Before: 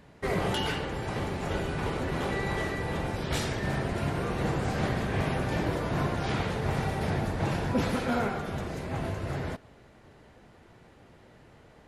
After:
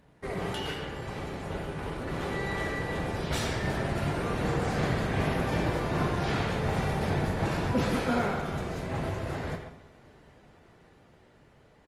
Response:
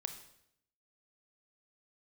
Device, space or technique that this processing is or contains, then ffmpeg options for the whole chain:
speakerphone in a meeting room: -filter_complex "[1:a]atrim=start_sample=2205[s0];[0:a][s0]afir=irnorm=-1:irlink=0,asplit=2[s1][s2];[s2]adelay=130,highpass=300,lowpass=3400,asoftclip=type=hard:threshold=0.0531,volume=0.398[s3];[s1][s3]amix=inputs=2:normalize=0,dynaudnorm=f=570:g=9:m=1.88,volume=0.668" -ar 48000 -c:a libopus -b:a 32k

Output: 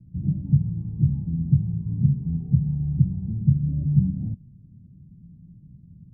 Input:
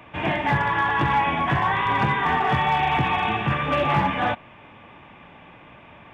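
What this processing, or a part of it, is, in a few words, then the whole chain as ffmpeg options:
the neighbour's flat through the wall: -af "lowpass=f=170:w=0.5412,lowpass=f=170:w=1.3066,equalizer=f=170:t=o:w=0.62:g=6,volume=1.88"

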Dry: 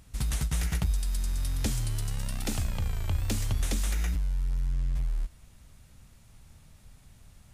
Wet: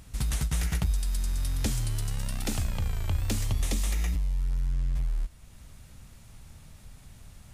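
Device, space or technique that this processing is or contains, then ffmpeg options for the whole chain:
parallel compression: -filter_complex "[0:a]asettb=1/sr,asplit=3[s0][s1][s2];[s0]atrim=end=3.454[s3];[s1]atrim=start=3.45:end=4.4,asetpts=PTS-STARTPTS,afade=t=in:d=0.004:c=qsin,afade=t=out:st=0.946:d=0.004:c=qsin,bandreject=f=1500:w=5.3[s4];[s2]atrim=start=4.396[s5];[s3][s4]acrossfade=d=0.004:c1=hsin:c2=qsin[s6];[s6][s5]acrossfade=d=0.004:c1=qsin:c2=hsin,asplit=2[s7][s8];[s8]acompressor=threshold=0.00447:ratio=6,volume=0.794[s9];[s7][s9]amix=inputs=2:normalize=0"

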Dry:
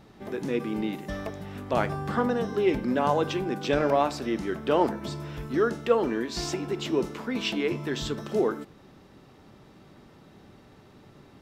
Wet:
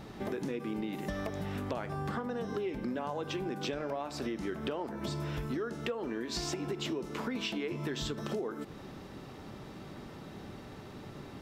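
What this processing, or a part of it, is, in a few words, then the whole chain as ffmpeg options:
serial compression, peaks first: -af "acompressor=threshold=0.0224:ratio=6,acompressor=threshold=0.00891:ratio=2.5,volume=2"

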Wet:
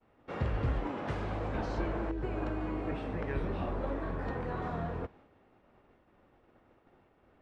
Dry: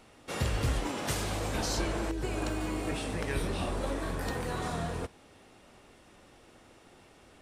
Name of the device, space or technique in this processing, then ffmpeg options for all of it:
hearing-loss simulation: -af "lowpass=1700,agate=range=0.0224:threshold=0.00251:ratio=3:detection=peak,volume=0.841"

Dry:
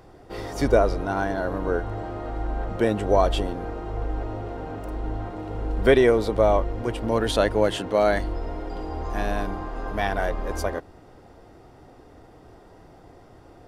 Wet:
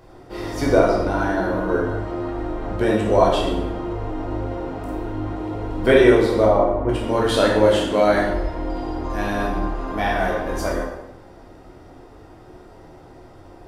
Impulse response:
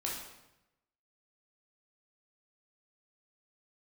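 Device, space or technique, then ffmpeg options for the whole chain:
bathroom: -filter_complex "[0:a]asplit=3[s0][s1][s2];[s0]afade=t=out:st=6.45:d=0.02[s3];[s1]lowpass=1400,afade=t=in:st=6.45:d=0.02,afade=t=out:st=6.88:d=0.02[s4];[s2]afade=t=in:st=6.88:d=0.02[s5];[s3][s4][s5]amix=inputs=3:normalize=0[s6];[1:a]atrim=start_sample=2205[s7];[s6][s7]afir=irnorm=-1:irlink=0,volume=1.26"

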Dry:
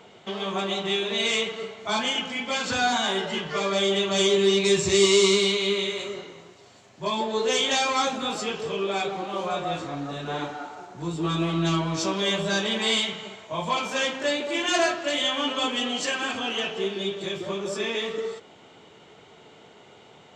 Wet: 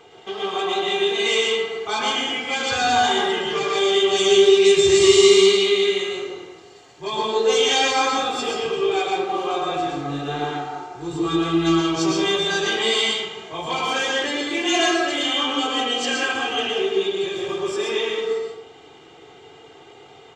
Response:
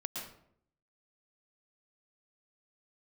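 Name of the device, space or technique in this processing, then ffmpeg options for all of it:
microphone above a desk: -filter_complex "[0:a]aecho=1:1:2.5:0.73[s0];[1:a]atrim=start_sample=2205[s1];[s0][s1]afir=irnorm=-1:irlink=0,volume=1.26"

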